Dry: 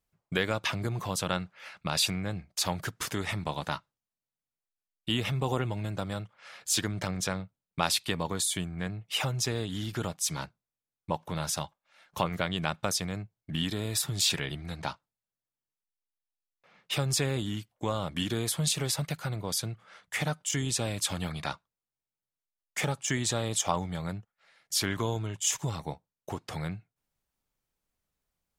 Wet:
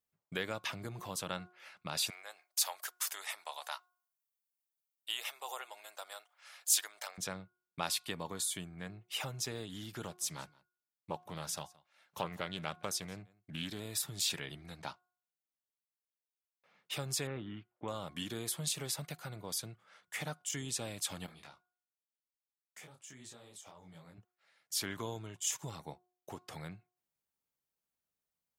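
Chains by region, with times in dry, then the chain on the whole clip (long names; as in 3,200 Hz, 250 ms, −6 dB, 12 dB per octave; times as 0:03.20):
0:02.10–0:07.18: high-pass filter 630 Hz 24 dB per octave + high-shelf EQ 6,100 Hz +10.5 dB
0:10.03–0:13.80: single-tap delay 171 ms −23.5 dB + highs frequency-modulated by the lows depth 0.2 ms
0:17.27–0:17.88: low-pass filter 2,600 Hz 24 dB per octave + parametric band 1,300 Hz +6 dB 0.25 octaves
0:21.26–0:24.18: downward compressor 10 to 1, threshold −36 dBFS + micro pitch shift up and down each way 51 cents
whole clip: high-pass filter 160 Hz 6 dB per octave; high-shelf EQ 11,000 Hz +7.5 dB; hum removal 361.2 Hz, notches 4; level −8.5 dB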